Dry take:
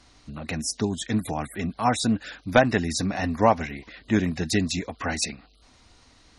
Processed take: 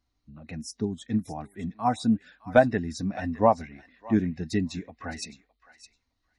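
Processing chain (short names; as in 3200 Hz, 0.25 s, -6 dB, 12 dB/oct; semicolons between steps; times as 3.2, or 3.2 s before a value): thinning echo 0.612 s, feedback 27%, high-pass 1200 Hz, level -9 dB; spectral expander 1.5:1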